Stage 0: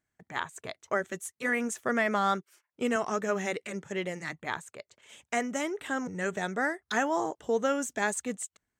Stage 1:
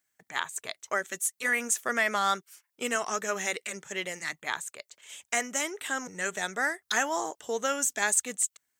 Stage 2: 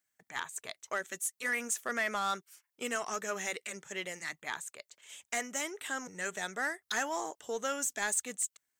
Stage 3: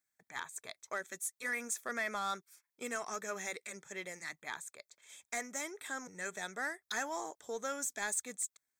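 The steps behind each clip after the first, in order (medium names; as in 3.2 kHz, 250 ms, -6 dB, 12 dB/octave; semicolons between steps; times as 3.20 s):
tilt EQ +3.5 dB/octave
saturation -18.5 dBFS, distortion -18 dB; trim -4.5 dB
Butterworth band-stop 2.9 kHz, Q 5.5; trim -4 dB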